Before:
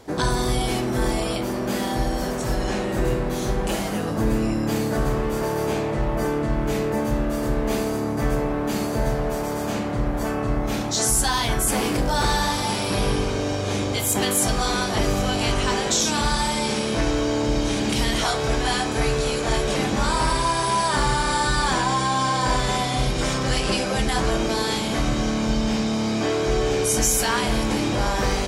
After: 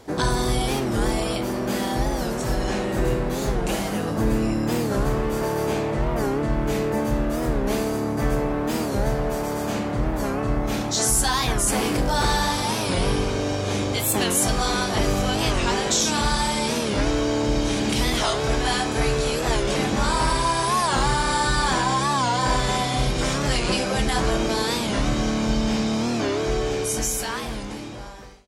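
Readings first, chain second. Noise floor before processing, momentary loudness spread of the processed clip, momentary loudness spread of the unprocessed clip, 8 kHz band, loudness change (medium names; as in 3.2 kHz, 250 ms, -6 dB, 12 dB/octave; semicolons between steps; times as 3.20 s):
-26 dBFS, 5 LU, 5 LU, -0.5 dB, 0.0 dB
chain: fade out at the end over 2.48 s; warped record 45 rpm, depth 160 cents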